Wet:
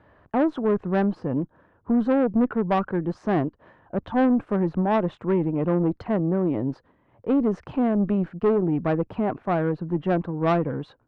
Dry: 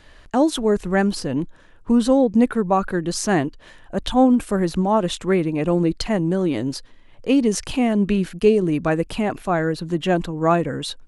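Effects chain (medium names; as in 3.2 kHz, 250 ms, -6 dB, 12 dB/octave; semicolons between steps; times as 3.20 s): Chebyshev band-pass 100–1100 Hz, order 2; valve stage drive 15 dB, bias 0.35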